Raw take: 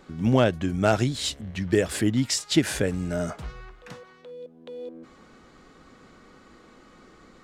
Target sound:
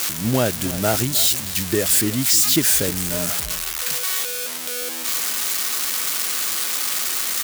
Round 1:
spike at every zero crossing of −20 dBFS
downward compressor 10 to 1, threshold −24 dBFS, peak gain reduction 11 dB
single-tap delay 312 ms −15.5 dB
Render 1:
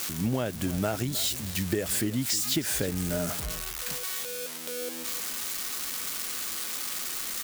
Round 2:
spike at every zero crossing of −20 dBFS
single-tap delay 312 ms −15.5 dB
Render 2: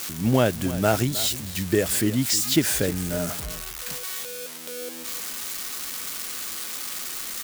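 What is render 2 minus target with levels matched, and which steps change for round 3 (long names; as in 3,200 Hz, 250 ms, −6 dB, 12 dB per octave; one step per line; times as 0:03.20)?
spike at every zero crossing: distortion −9 dB
change: spike at every zero crossing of −10.5 dBFS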